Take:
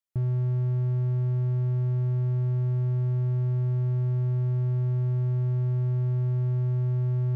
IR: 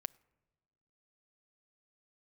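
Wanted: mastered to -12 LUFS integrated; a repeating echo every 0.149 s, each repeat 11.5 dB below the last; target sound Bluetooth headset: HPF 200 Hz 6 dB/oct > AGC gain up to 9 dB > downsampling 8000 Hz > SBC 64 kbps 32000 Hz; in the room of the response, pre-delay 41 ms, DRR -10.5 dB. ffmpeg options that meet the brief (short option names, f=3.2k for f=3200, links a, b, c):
-filter_complex "[0:a]aecho=1:1:149|298|447:0.266|0.0718|0.0194,asplit=2[a][b];[1:a]atrim=start_sample=2205,adelay=41[c];[b][c]afir=irnorm=-1:irlink=0,volume=13.5dB[d];[a][d]amix=inputs=2:normalize=0,highpass=f=200:p=1,dynaudnorm=m=9dB,aresample=8000,aresample=44100,volume=8.5dB" -ar 32000 -c:a sbc -b:a 64k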